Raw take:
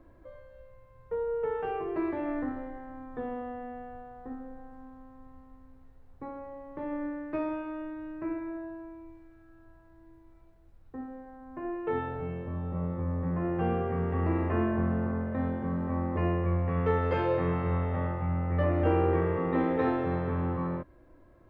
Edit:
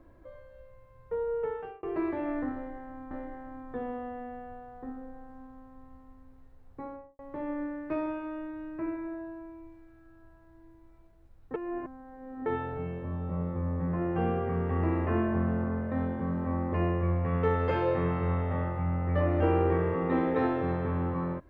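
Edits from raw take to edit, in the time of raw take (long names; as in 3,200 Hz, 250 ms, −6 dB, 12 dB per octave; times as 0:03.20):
0:01.40–0:01.83: fade out
0:02.54–0:03.11: repeat, 2 plays
0:06.30–0:06.62: fade out and dull
0:10.97–0:11.89: reverse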